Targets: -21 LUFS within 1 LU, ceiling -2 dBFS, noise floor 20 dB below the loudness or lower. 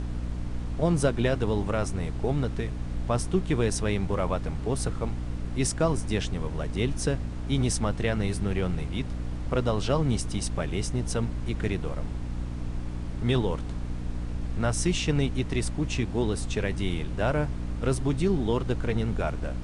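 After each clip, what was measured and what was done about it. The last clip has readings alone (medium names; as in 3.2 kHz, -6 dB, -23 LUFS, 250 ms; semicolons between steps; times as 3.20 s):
hum 60 Hz; highest harmonic 300 Hz; hum level -31 dBFS; noise floor -33 dBFS; noise floor target -49 dBFS; loudness -29.0 LUFS; peak level -10.5 dBFS; loudness target -21.0 LUFS
-> hum notches 60/120/180/240/300 Hz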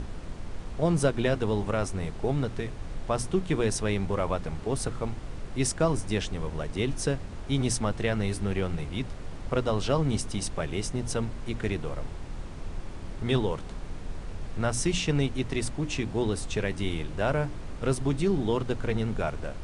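hum not found; noise floor -39 dBFS; noise floor target -50 dBFS
-> noise print and reduce 11 dB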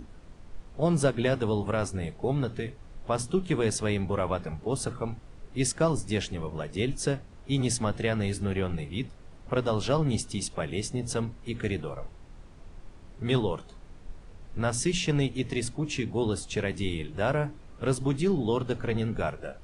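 noise floor -49 dBFS; noise floor target -50 dBFS
-> noise print and reduce 6 dB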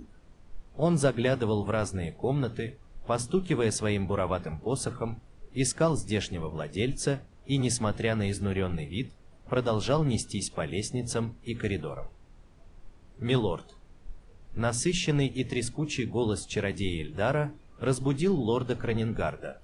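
noise floor -54 dBFS; loudness -29.5 LUFS; peak level -12.0 dBFS; loudness target -21.0 LUFS
-> trim +8.5 dB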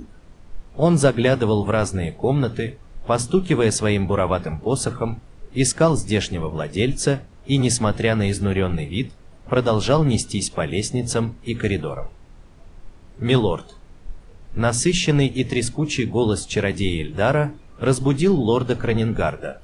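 loudness -21.0 LUFS; peak level -3.5 dBFS; noise floor -46 dBFS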